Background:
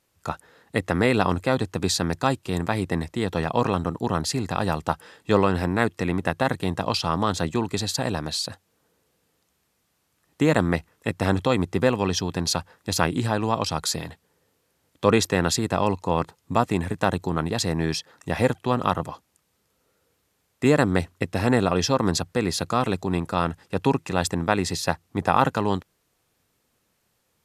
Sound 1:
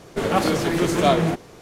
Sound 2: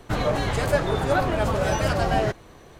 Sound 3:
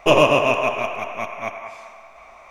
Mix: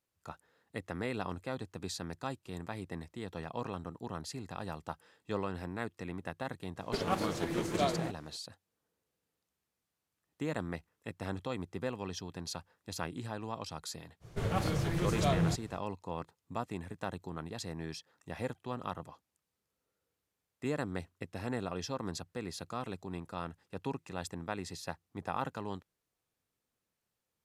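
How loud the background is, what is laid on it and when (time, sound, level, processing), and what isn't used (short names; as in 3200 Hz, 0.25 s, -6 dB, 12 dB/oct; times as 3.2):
background -16.5 dB
6.76 add 1 -15.5 dB + transient shaper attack +7 dB, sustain 0 dB
14.2 add 1 -13.5 dB, fades 0.05 s + resonant low shelf 170 Hz +12 dB, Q 1.5
not used: 2, 3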